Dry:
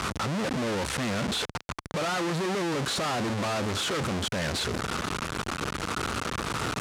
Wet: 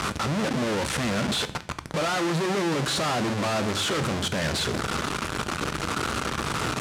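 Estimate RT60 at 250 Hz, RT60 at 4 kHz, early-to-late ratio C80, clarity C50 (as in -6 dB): 0.85 s, 0.50 s, 20.5 dB, 17.0 dB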